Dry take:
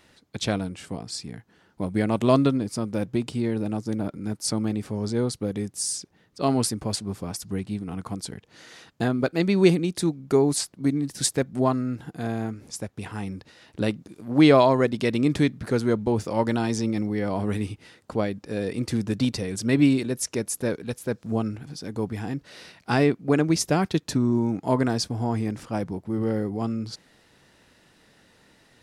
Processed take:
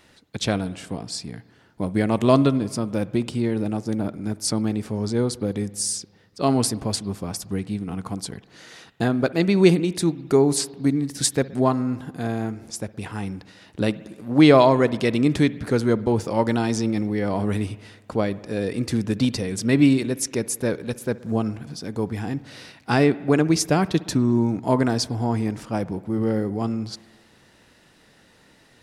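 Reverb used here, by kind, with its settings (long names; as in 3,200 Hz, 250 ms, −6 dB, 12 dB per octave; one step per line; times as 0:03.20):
spring reverb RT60 1.4 s, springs 59 ms, chirp 50 ms, DRR 17.5 dB
level +2.5 dB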